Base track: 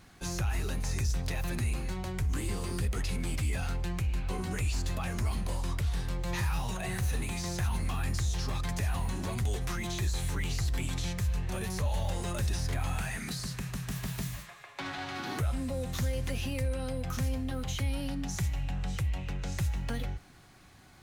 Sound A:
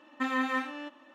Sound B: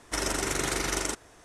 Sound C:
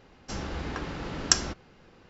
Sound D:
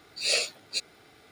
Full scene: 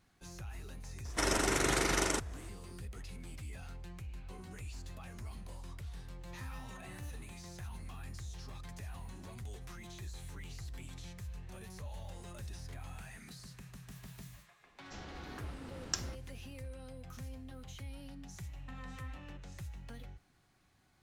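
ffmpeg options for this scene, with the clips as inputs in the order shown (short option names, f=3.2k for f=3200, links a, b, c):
-filter_complex "[1:a]asplit=2[a][b];[0:a]volume=-14.5dB[c];[2:a]highshelf=f=4.1k:g=-4.5[d];[a]acompressor=threshold=-40dB:ratio=6:attack=3.2:release=140:knee=1:detection=peak[e];[b]acompressor=threshold=-34dB:ratio=6:attack=3.2:release=140:knee=1:detection=peak[f];[d]atrim=end=1.44,asetpts=PTS-STARTPTS,volume=-0.5dB,afade=t=in:d=0.004:c=hsin,afade=t=out:st=1.436:d=0.004:c=hsin,adelay=1050[g];[e]atrim=end=1.14,asetpts=PTS-STARTPTS,volume=-11.5dB,afade=t=in:d=0.004:c=hsin,afade=t=out:st=1.136:d=0.004:c=hsin,adelay=6210[h];[3:a]atrim=end=2.09,asetpts=PTS-STARTPTS,volume=-14dB,afade=t=in:d=0.004:c=hsin,afade=t=out:st=2.086:d=0.004:c=hsin,adelay=14620[i];[f]atrim=end=1.14,asetpts=PTS-STARTPTS,volume=-14dB,afade=t=in:d=0.004:c=hsin,afade=t=out:st=1.136:d=0.004:c=hsin,adelay=18480[j];[c][g][h][i][j]amix=inputs=5:normalize=0"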